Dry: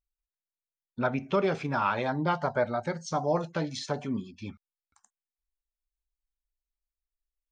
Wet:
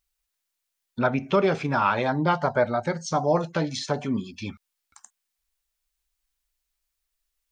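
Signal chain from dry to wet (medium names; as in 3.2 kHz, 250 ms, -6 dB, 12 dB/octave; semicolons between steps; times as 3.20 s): tape noise reduction on one side only encoder only; trim +5 dB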